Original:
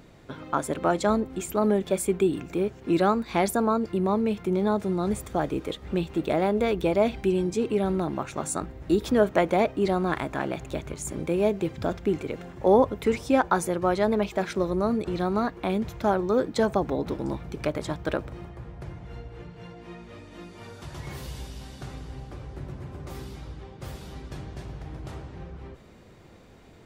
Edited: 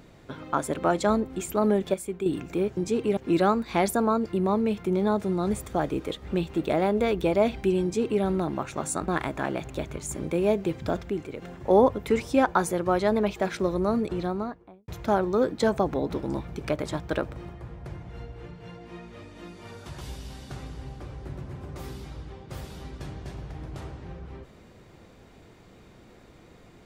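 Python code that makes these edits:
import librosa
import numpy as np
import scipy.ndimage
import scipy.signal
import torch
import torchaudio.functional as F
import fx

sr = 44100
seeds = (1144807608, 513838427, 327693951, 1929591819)

y = fx.studio_fade_out(x, sr, start_s=14.97, length_s=0.87)
y = fx.edit(y, sr, fx.clip_gain(start_s=1.94, length_s=0.32, db=-8.0),
    fx.duplicate(start_s=7.43, length_s=0.4, to_s=2.77),
    fx.cut(start_s=8.68, length_s=1.36),
    fx.clip_gain(start_s=12.06, length_s=0.32, db=-5.0),
    fx.cut(start_s=20.97, length_s=0.35), tone=tone)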